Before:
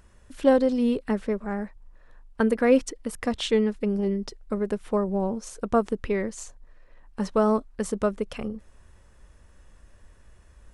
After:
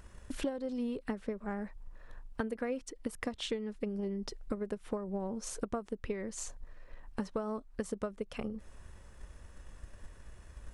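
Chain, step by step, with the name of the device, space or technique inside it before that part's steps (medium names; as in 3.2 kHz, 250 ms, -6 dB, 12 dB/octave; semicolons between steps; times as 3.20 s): drum-bus smash (transient shaper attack +7 dB, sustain +2 dB; compression 8:1, threshold -33 dBFS, peak gain reduction 24 dB; saturation -20.5 dBFS, distortion -25 dB)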